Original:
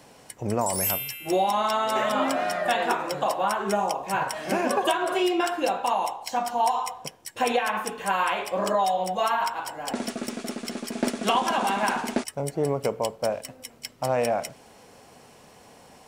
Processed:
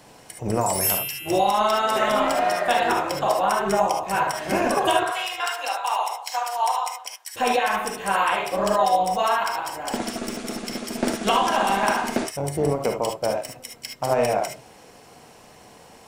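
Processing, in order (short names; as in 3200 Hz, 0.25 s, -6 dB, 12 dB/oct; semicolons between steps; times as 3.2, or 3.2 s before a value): 5.03–7.35 HPF 780 Hz 24 dB/oct; reverb, pre-delay 3 ms, DRR 2.5 dB; AM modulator 240 Hz, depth 30%; gain +3.5 dB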